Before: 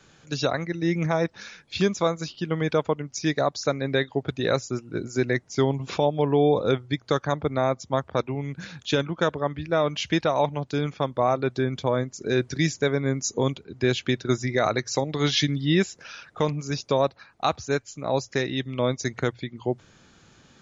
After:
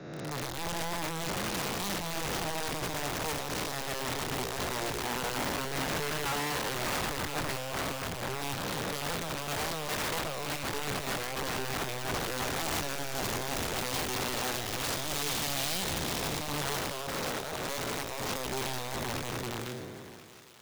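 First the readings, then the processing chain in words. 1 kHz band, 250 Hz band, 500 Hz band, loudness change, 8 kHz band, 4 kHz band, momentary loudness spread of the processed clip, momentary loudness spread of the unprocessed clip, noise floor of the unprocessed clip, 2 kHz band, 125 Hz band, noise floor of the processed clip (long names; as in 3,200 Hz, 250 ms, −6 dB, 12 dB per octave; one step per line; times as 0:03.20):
−5.0 dB, −12.0 dB, −12.5 dB, −7.0 dB, can't be measured, −2.5 dB, 4 LU, 7 LU, −57 dBFS, −3.0 dB, −11.5 dB, −39 dBFS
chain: spectrum smeared in time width 1,070 ms
in parallel at +2 dB: brickwall limiter −26.5 dBFS, peak gain reduction 11 dB
on the sum: wrap-around overflow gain 22 dB
feedback echo with a high-pass in the loop 1,033 ms, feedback 63%, high-pass 880 Hz, level −10 dB
multiband upward and downward expander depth 70%
level −5.5 dB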